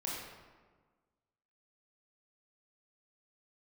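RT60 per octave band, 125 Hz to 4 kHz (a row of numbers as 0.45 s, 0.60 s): 1.5 s, 1.7 s, 1.5 s, 1.4 s, 1.1 s, 0.85 s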